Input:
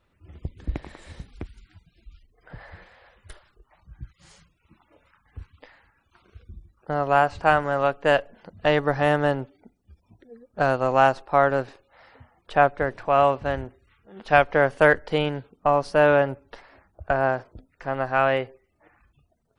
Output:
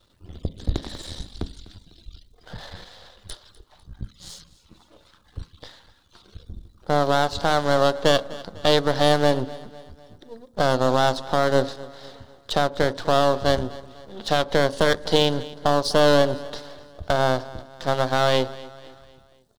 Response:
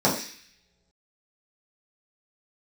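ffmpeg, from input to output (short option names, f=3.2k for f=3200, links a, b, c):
-filter_complex "[0:a]aeval=exprs='if(lt(val(0),0),0.251*val(0),val(0))':c=same,alimiter=limit=-14dB:level=0:latency=1:release=160,highshelf=f=3k:t=q:w=3:g=7.5,aecho=1:1:250|500|750|1000:0.112|0.0527|0.0248|0.0116,asplit=2[a][b];[1:a]atrim=start_sample=2205,lowpass=2.5k[c];[b][c]afir=irnorm=-1:irlink=0,volume=-33dB[d];[a][d]amix=inputs=2:normalize=0,volume=8dB"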